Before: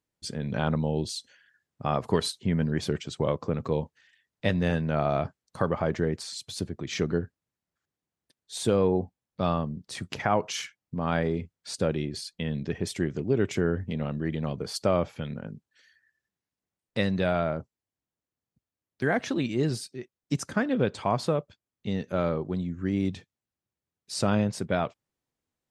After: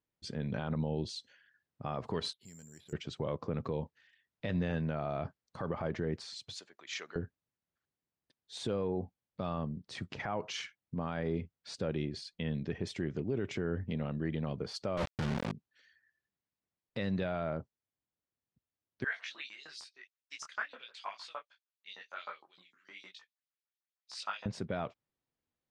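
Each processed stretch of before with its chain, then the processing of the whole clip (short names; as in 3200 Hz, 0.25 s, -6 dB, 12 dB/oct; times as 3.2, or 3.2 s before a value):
2.33–2.93 pre-emphasis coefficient 0.8 + compressor 2:1, threshold -54 dBFS + careless resampling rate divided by 6×, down filtered, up zero stuff
6.55–7.16 HPF 1100 Hz + bell 7000 Hz +7.5 dB 0.25 oct
14.97–15.52 LPF 1700 Hz 6 dB/oct + companded quantiser 2-bit
19.04–24.46 LFO high-pass saw up 6.5 Hz 990–6300 Hz + detuned doubles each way 33 cents
whole clip: LPF 4700 Hz 12 dB/oct; limiter -19.5 dBFS; gain -4.5 dB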